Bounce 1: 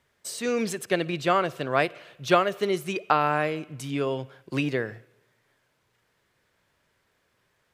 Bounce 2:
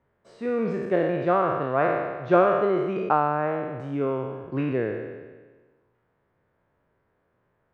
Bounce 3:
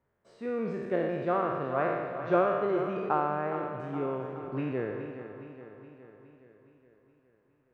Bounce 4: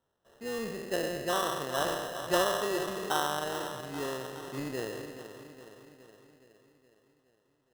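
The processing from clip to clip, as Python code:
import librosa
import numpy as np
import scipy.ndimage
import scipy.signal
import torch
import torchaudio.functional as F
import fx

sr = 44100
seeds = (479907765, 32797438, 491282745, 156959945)

y1 = fx.spec_trails(x, sr, decay_s=1.39)
y1 = scipy.signal.sosfilt(scipy.signal.butter(2, 1100.0, 'lowpass', fs=sr, output='sos'), y1)
y2 = fx.echo_feedback(y1, sr, ms=417, feedback_pct=57, wet_db=-10.5)
y2 = y2 * librosa.db_to_amplitude(-6.5)
y3 = fx.low_shelf(y2, sr, hz=400.0, db=-7.0)
y3 = fx.sample_hold(y3, sr, seeds[0], rate_hz=2300.0, jitter_pct=0)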